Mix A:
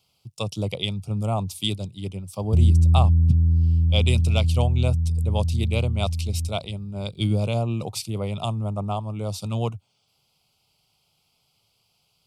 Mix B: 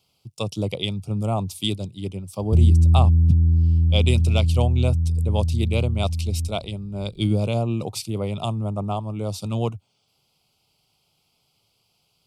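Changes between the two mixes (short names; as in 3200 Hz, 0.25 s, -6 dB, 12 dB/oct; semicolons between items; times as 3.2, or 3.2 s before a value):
background: remove HPF 71 Hz 24 dB/oct; master: add bell 320 Hz +4.5 dB 1.2 oct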